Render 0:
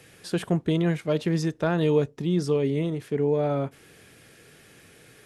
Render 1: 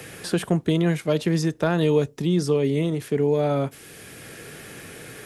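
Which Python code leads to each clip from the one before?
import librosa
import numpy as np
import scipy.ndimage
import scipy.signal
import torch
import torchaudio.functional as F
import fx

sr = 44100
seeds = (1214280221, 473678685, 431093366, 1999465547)

y = fx.high_shelf(x, sr, hz=6200.0, db=8.5)
y = fx.band_squash(y, sr, depth_pct=40)
y = y * librosa.db_to_amplitude(2.5)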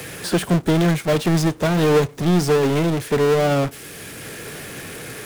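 y = fx.power_curve(x, sr, exponent=0.35)
y = y + 10.0 ** (-22.0 / 20.0) * np.pad(y, (int(1126 * sr / 1000.0), 0))[:len(y)]
y = fx.upward_expand(y, sr, threshold_db=-24.0, expansion=2.5)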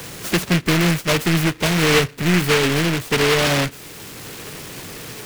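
y = fx.noise_mod_delay(x, sr, seeds[0], noise_hz=1900.0, depth_ms=0.27)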